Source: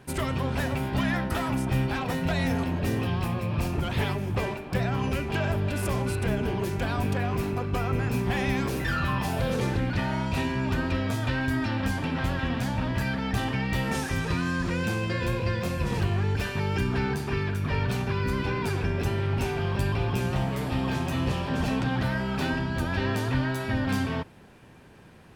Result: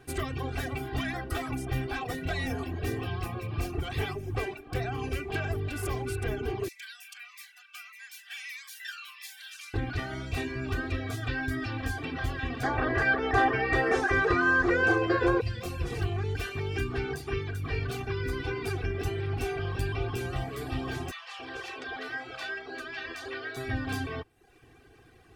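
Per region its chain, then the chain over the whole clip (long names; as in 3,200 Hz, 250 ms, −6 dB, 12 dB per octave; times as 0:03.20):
0:06.68–0:09.74: inverse Chebyshev high-pass filter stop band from 370 Hz, stop band 70 dB + phaser whose notches keep moving one way falling 1.6 Hz
0:12.63–0:15.41: low-pass filter 6,700 Hz + flat-topped bell 770 Hz +12.5 dB 2.9 octaves
0:21.11–0:23.57: three-way crossover with the lows and the highs turned down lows −24 dB, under 380 Hz, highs −12 dB, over 7,400 Hz + multiband delay without the direct sound highs, lows 280 ms, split 790 Hz
whole clip: reverb reduction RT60 0.66 s; notch filter 910 Hz, Q 7.3; comb filter 2.6 ms, depth 75%; level −4.5 dB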